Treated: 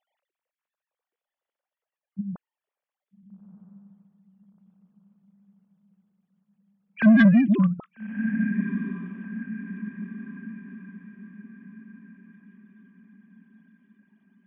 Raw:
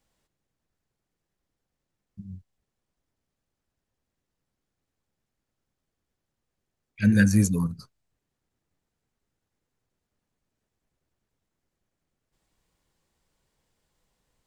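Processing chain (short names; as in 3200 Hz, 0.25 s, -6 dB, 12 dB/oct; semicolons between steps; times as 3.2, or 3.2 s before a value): sine-wave speech; diffused feedback echo 1.279 s, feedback 42%, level -12 dB; soft clip -17 dBFS, distortion -12 dB; gain +7 dB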